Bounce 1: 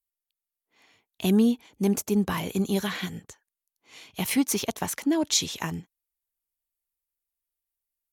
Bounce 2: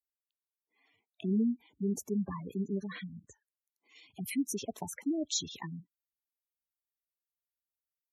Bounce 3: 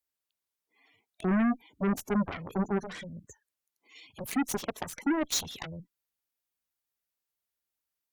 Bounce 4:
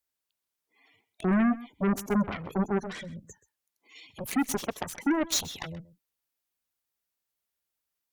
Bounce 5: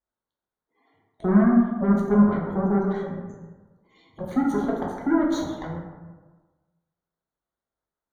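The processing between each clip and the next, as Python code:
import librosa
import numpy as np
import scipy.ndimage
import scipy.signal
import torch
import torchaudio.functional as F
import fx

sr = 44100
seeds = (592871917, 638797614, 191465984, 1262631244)

y1 = scipy.signal.sosfilt(scipy.signal.butter(4, 46.0, 'highpass', fs=sr, output='sos'), x)
y1 = fx.spec_gate(y1, sr, threshold_db=-10, keep='strong')
y1 = y1 * 10.0 ** (-8.0 / 20.0)
y2 = 10.0 ** (-24.5 / 20.0) * np.tanh(y1 / 10.0 ** (-24.5 / 20.0))
y2 = fx.cheby_harmonics(y2, sr, harmonics=(7, 8), levels_db=(-10, -28), full_scale_db=-25.0)
y2 = y2 * 10.0 ** (4.0 / 20.0)
y3 = y2 + 10.0 ** (-18.5 / 20.0) * np.pad(y2, (int(129 * sr / 1000.0), 0))[:len(y2)]
y3 = y3 * 10.0 ** (2.0 / 20.0)
y4 = scipy.signal.lfilter(np.full(17, 1.0 / 17), 1.0, y3)
y4 = fx.rev_plate(y4, sr, seeds[0], rt60_s=1.3, hf_ratio=0.4, predelay_ms=0, drr_db=-2.5)
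y4 = y4 * 10.0 ** (2.5 / 20.0)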